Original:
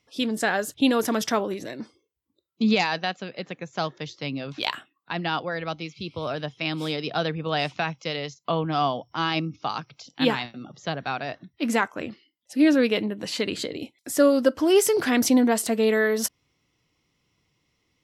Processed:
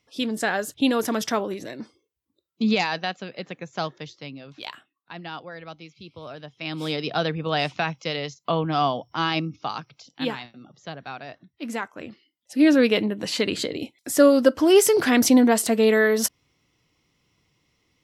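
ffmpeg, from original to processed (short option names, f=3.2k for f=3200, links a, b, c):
-af "volume=20dB,afade=t=out:st=3.83:d=0.53:silence=0.375837,afade=t=in:st=6.52:d=0.42:silence=0.298538,afade=t=out:st=9.22:d=1.19:silence=0.375837,afade=t=in:st=11.91:d=0.95:silence=0.316228"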